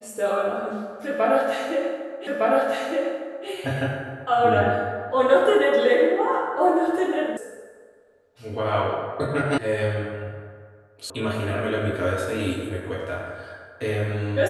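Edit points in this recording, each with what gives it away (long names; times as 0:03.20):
0:02.27: the same again, the last 1.21 s
0:07.37: cut off before it has died away
0:09.58: cut off before it has died away
0:11.10: cut off before it has died away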